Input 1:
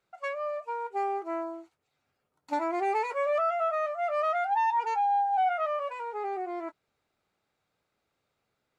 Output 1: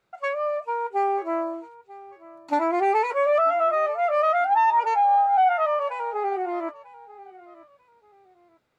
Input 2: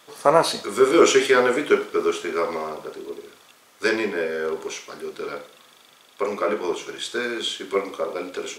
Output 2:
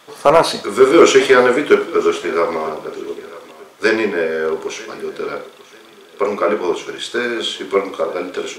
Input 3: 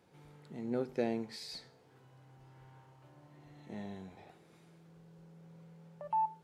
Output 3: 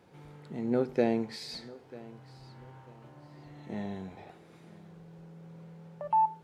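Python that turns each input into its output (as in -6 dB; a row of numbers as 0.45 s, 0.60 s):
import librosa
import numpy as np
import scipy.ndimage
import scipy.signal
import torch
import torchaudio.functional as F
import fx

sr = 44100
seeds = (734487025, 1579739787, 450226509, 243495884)

p1 = fx.high_shelf(x, sr, hz=4300.0, db=-6.0)
p2 = np.clip(p1, -10.0 ** (-8.5 / 20.0), 10.0 ** (-8.5 / 20.0))
p3 = p2 + fx.echo_feedback(p2, sr, ms=942, feedback_pct=31, wet_db=-20.0, dry=0)
y = F.gain(torch.from_numpy(p3), 7.0).numpy()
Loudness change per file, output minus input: +7.0 LU, +6.5 LU, +6.5 LU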